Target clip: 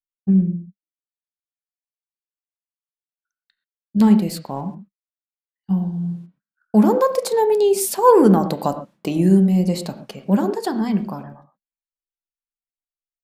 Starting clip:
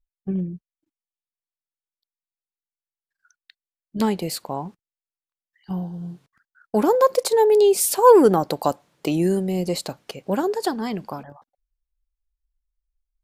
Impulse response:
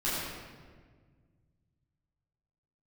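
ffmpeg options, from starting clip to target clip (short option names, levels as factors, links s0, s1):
-filter_complex "[0:a]agate=range=0.0224:threshold=0.00562:ratio=3:detection=peak,equalizer=f=200:w=3.1:g=11.5,asettb=1/sr,asplit=3[s0][s1][s2];[s0]atrim=end=4.134[s3];[s1]atrim=start=4.13:end=4.61,asetpts=PTS-STARTPTS,afade=t=in:d=0.004:c=qsin,afade=t=out:st=0.476:d=0.004:c=qsin,aeval=exprs='sgn(val(0))*max(abs(val(0))-0.00282,0)':c=same[s4];[s2]atrim=start=4.606[s5];[s3][s4]acrossfade=d=0.004:c1=hsin:c2=qsin[s6];[s6][s5]acrossfade=d=0.004:c1=qsin:c2=hsin,asplit=2[s7][s8];[1:a]atrim=start_sample=2205,atrim=end_sample=6174,lowpass=2700[s9];[s8][s9]afir=irnorm=-1:irlink=0,volume=0.211[s10];[s7][s10]amix=inputs=2:normalize=0,volume=0.794"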